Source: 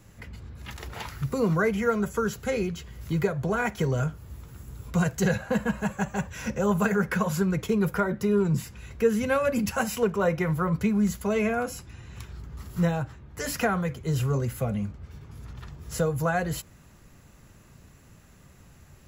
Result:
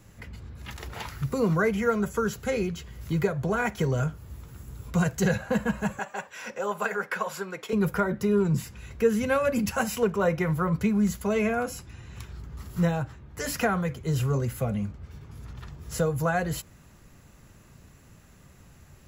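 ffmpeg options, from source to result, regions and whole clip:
ffmpeg -i in.wav -filter_complex "[0:a]asettb=1/sr,asplit=3[link_01][link_02][link_03];[link_01]atrim=end=5.994[link_04];[link_02]atrim=start=5.99:end=7.73,asetpts=PTS-STARTPTS,afade=type=in:duration=0.004:curve=qsin,afade=type=out:start_time=1.736:duration=0.004:curve=qsin,highpass=510,highshelf=frequency=7900:gain=-7.5,bandreject=frequency=6300:width=12[link_05];[link_03]atrim=start=7.726[link_06];[link_04][link_05]acrossfade=duration=0.004:curve1=hsin:curve2=qsin[link_07];[link_07][link_06]acrossfade=duration=0.004:curve1=qsin:curve2=hsin" out.wav

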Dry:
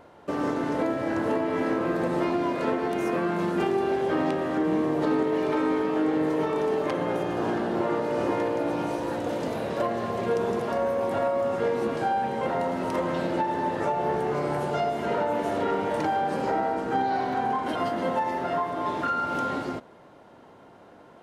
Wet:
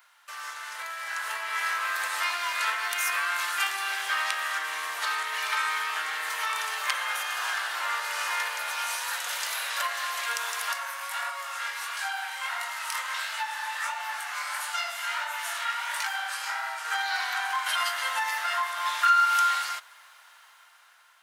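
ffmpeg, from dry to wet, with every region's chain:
ffmpeg -i in.wav -filter_complex "[0:a]asettb=1/sr,asplit=3[link_01][link_02][link_03];[link_01]atrim=end=10.734[link_04];[link_02]atrim=start=10.73:end=16.85,asetpts=PTS-STARTPTS,afade=type=in:duration=0.004:curve=qsin,afade=type=out:start_time=6.116:duration=0.004:curve=qsin,flanger=delay=18:depth=7.2:speed=1.5,highpass=frequency=600:width=0.5412,highpass=frequency=600:width=1.3066[link_05];[link_03]atrim=start=16.846[link_06];[link_04][link_05]acrossfade=duration=0.004:curve1=hsin:curve2=qsin[link_07];[link_07][link_06]acrossfade=duration=0.004:curve1=qsin:curve2=hsin,highpass=frequency=1300:width=0.5412,highpass=frequency=1300:width=1.3066,aemphasis=mode=production:type=50kf,dynaudnorm=framelen=370:gausssize=7:maxgain=9dB" out.wav

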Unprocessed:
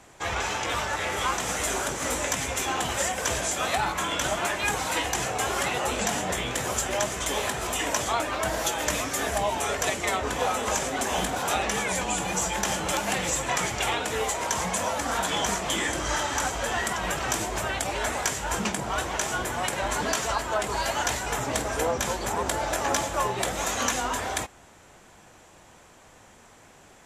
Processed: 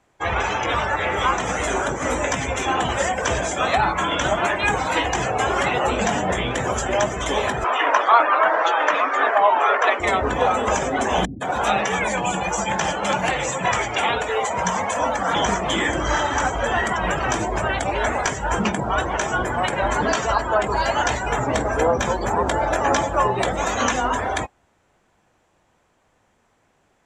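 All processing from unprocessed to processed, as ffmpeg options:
ffmpeg -i in.wav -filter_complex "[0:a]asettb=1/sr,asplit=3[link_01][link_02][link_03];[link_01]atrim=end=7.644[link_04];[link_02]atrim=start=7.64:end=10,asetpts=PTS-STARTPTS,afade=type=in:duration=0.004:curve=qsin,afade=type=out:start_time=2.356:duration=0.004:curve=qsin,highpass=400,lowpass=4100,equalizer=frequency=1200:width=1.4:gain=8.5[link_05];[link_03]atrim=start=9.996[link_06];[link_04][link_05]acrossfade=duration=0.004:curve1=hsin:curve2=qsin[link_07];[link_07][link_06]acrossfade=duration=0.004:curve1=qsin:curve2=hsin,asettb=1/sr,asplit=3[link_08][link_09][link_10];[link_08]atrim=end=11.254[link_11];[link_09]atrim=start=11.25:end=15.35,asetpts=PTS-STARTPTS,afade=type=in:duration=0.004:curve=qsin,afade=type=out:start_time=4.096:duration=0.004:curve=qsin,lowshelf=frequency=67:gain=-10.5,acrossover=split=320[link_12][link_13];[link_13]adelay=160[link_14];[link_12][link_14]amix=inputs=2:normalize=0,atrim=end_sample=180810[link_15];[link_10]atrim=start=15.346[link_16];[link_11][link_15]acrossfade=duration=0.004:curve1=hsin:curve2=qsin[link_17];[link_17][link_16]acrossfade=duration=0.004:curve1=qsin:curve2=hsin,afftdn=noise_reduction=18:noise_floor=-35,acrossover=split=8500[link_18][link_19];[link_19]acompressor=threshold=-52dB:ratio=4:attack=1:release=60[link_20];[link_18][link_20]amix=inputs=2:normalize=0,highshelf=frequency=4500:gain=-9,volume=8dB" out.wav

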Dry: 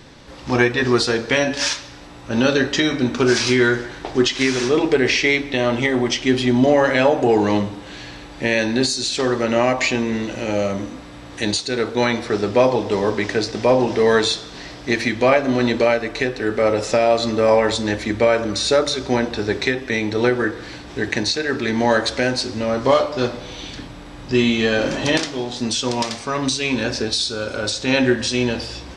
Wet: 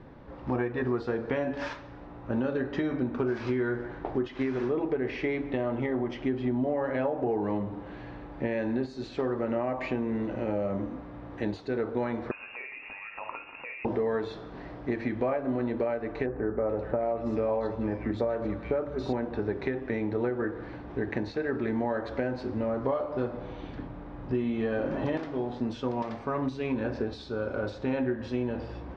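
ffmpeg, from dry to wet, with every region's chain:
ffmpeg -i in.wav -filter_complex "[0:a]asettb=1/sr,asplit=3[link_01][link_02][link_03];[link_01]atrim=end=12.314[link_04];[link_02]atrim=start=12.31:end=13.85,asetpts=PTS-STARTPTS,afade=type=in:duration=0.004:curve=qsin,afade=type=out:start_time=1.536:duration=0.004:curve=qsin,asplit=2[link_05][link_06];[link_06]adelay=49,volume=-12dB[link_07];[link_05][link_07]amix=inputs=2:normalize=0,atrim=end_sample=67914,acompressor=threshold=-23dB:ratio=5:attack=3.2:release=140:knee=1:detection=peak,lowpass=frequency=2500:width_type=q:width=0.5098,lowpass=frequency=2500:width_type=q:width=0.6013,lowpass=frequency=2500:width_type=q:width=0.9,lowpass=frequency=2500:width_type=q:width=2.563,afreqshift=-2900[link_08];[link_03]atrim=start=13.846[link_09];[link_04][link_08]acrossfade=duration=0.004:curve1=hsin:curve2=qsin[link_10];[link_10][link_09]acrossfade=duration=0.004:curve1=qsin:curve2=hsin,asettb=1/sr,asplit=3[link_11][link_12][link_13];[link_11]atrim=end=16.264[link_14];[link_12]atrim=start=16.26:end=19.13,asetpts=PTS-STARTPTS,afade=type=in:duration=0.004:curve=qsin,afade=type=out:start_time=2.866:duration=0.004:curve=qsin,aeval=exprs='val(0)+0.0141*(sin(2*PI*60*n/s)+sin(2*PI*2*60*n/s)/2+sin(2*PI*3*60*n/s)/3+sin(2*PI*4*60*n/s)/4+sin(2*PI*5*60*n/s)/5)':channel_layout=same,acrossover=split=1900[link_15][link_16];[link_16]adelay=430[link_17];[link_15][link_17]amix=inputs=2:normalize=0,atrim=end_sample=126567[link_18];[link_13]atrim=start=19.126[link_19];[link_14][link_18]acrossfade=duration=0.004:curve1=hsin:curve2=qsin[link_20];[link_20][link_19]acrossfade=duration=0.004:curve1=qsin:curve2=hsin,lowpass=1200,acompressor=threshold=-22dB:ratio=5,volume=-4dB" out.wav

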